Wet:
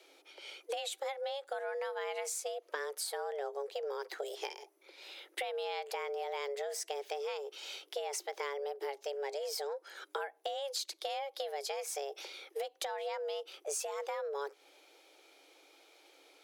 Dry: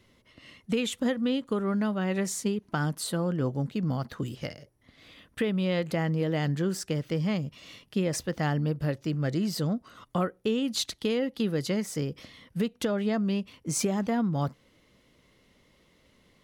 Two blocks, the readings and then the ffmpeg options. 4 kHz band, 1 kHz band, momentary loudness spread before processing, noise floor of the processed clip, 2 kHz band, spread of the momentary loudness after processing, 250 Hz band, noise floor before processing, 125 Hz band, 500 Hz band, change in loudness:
−5.0 dB, −2.5 dB, 7 LU, −68 dBFS, −6.0 dB, 6 LU, below −35 dB, −65 dBFS, below −40 dB, −5.5 dB, −9.5 dB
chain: -af "tiltshelf=frequency=1100:gain=-3.5,acompressor=threshold=-37dB:ratio=6,afreqshift=280,volume=1dB"

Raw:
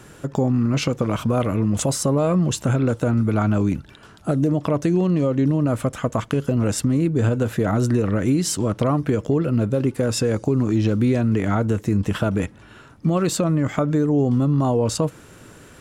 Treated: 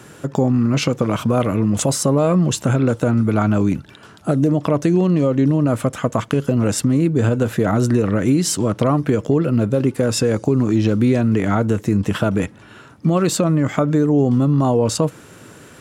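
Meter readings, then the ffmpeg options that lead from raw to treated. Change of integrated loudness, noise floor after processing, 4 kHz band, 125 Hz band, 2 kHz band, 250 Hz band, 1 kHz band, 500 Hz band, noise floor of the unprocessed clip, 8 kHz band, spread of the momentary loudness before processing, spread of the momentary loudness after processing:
+3.0 dB, −44 dBFS, +3.5 dB, +2.5 dB, +3.5 dB, +3.5 dB, +3.5 dB, +3.5 dB, −46 dBFS, +3.5 dB, 5 LU, 5 LU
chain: -af "highpass=95,volume=3.5dB"

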